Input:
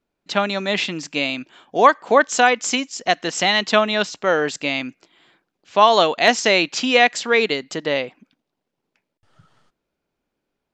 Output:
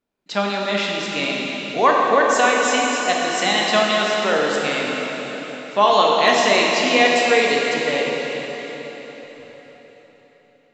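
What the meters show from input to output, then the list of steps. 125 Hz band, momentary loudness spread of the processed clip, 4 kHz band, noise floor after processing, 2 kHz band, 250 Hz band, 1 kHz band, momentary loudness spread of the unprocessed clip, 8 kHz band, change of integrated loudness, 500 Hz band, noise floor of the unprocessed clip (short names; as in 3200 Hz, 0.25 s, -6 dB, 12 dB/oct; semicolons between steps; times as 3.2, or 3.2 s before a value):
0.0 dB, 13 LU, +0.5 dB, -54 dBFS, +1.0 dB, +0.5 dB, +1.0 dB, 10 LU, +0.5 dB, +0.5 dB, +1.0 dB, -80 dBFS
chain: low shelf 88 Hz -6.5 dB; on a send: delay with a stepping band-pass 0.167 s, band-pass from 180 Hz, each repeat 0.7 oct, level -9 dB; on the sum: plate-style reverb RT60 4.5 s, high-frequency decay 0.85×, DRR -3 dB; gain -4 dB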